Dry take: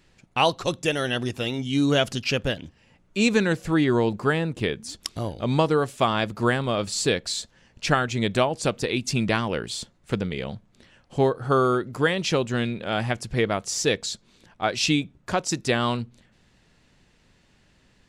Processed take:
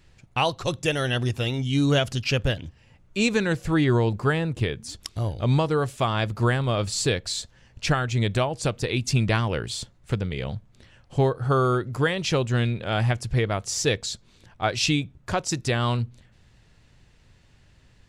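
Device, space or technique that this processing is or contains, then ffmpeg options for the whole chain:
car stereo with a boomy subwoofer: -af "lowshelf=f=150:t=q:w=1.5:g=6.5,alimiter=limit=-10.5dB:level=0:latency=1:release=349"

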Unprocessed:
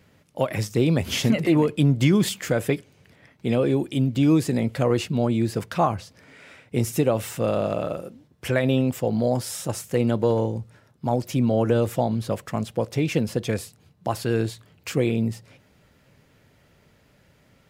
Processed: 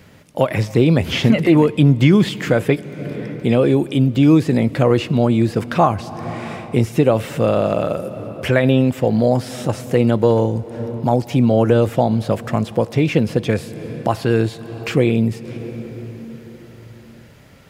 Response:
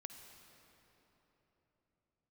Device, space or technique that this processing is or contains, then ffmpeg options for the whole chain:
ducked reverb: -filter_complex "[0:a]acrossover=split=3900[a][b];[b]acompressor=threshold=-48dB:ratio=4:attack=1:release=60[c];[a][c]amix=inputs=2:normalize=0,asplit=3[d][e][f];[1:a]atrim=start_sample=2205[g];[e][g]afir=irnorm=-1:irlink=0[h];[f]apad=whole_len=780394[i];[h][i]sidechaincompress=threshold=-36dB:ratio=4:attack=29:release=309,volume=5dB[j];[d][j]amix=inputs=2:normalize=0,volume=5.5dB"

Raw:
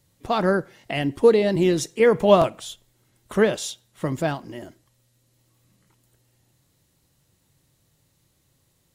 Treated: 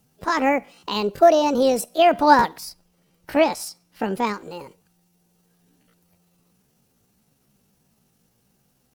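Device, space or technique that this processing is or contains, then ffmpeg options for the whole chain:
chipmunk voice: -filter_complex "[0:a]asetrate=64194,aresample=44100,atempo=0.686977,asettb=1/sr,asplit=3[a][b][c];[a]atrim=end=2.704[d];[b]atrim=start=2.7:end=4.25,asetpts=PTS-STARTPTS,afade=t=in:d=0.004:c=qsin,afade=t=out:st=1.546:d=0.004:c=qsin,highshelf=f=7.8k:g=-4.5[e];[c]atrim=start=4.246[f];[d][e]acrossfade=d=0.004:c1=hsin:c2=qsin[g];[g][f]acrossfade=d=0.004:c1=qsin:c2=hsin,volume=1dB"

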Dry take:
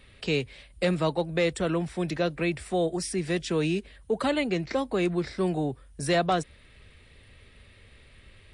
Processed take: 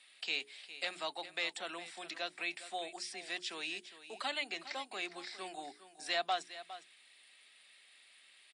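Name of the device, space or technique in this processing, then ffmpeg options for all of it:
television speaker: -filter_complex "[0:a]acrossover=split=5000[a][b];[b]acompressor=threshold=-58dB:ratio=4:attack=1:release=60[c];[a][c]amix=inputs=2:normalize=0,highpass=f=220:w=0.5412,highpass=f=220:w=1.3066,equalizer=f=480:t=q:w=4:g=-7,equalizer=f=740:t=q:w=4:g=8,equalizer=f=6k:t=q:w=4:g=-5,lowpass=f=8.7k:w=0.5412,lowpass=f=8.7k:w=1.3066,aderivative,bandreject=f=60:t=h:w=6,bandreject=f=120:t=h:w=6,bandreject=f=180:t=h:w=6,bandreject=f=240:t=h:w=6,bandreject=f=300:t=h:w=6,bandreject=f=360:t=h:w=6,bandreject=f=420:t=h:w=6,aecho=1:1:408:0.2,volume=5dB"

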